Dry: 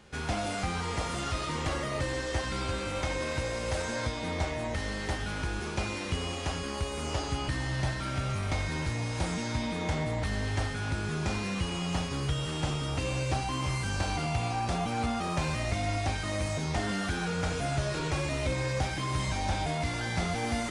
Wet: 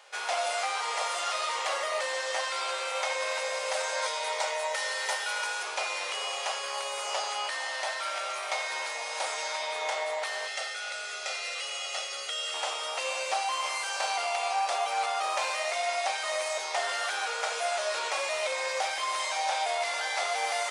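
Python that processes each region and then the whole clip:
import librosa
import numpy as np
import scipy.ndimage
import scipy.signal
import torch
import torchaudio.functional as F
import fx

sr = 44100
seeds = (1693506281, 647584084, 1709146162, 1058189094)

y = fx.chain(x, sr, fx.highpass(hz=390.0, slope=12),
    fx.high_shelf(hz=6900.0, db=7.5),
    fx.comb(ms=2.1, depth=0.47), at=(4.02, 5.63))
y = fx.chain(y, sr, fx.lowpass(hz=9400.0, slope=12),
    fx.peak_eq(hz=870.0, db=-11.0, octaves=1.3),
    fx.comb(ms=1.5, depth=0.61), at=(10.47, 12.54))
y = scipy.signal.sosfilt(scipy.signal.butter(6, 550.0, 'highpass', fs=sr, output='sos'), y)
y = fx.peak_eq(y, sr, hz=1600.0, db=-3.0, octaves=0.24)
y = F.gain(torch.from_numpy(y), 5.0).numpy()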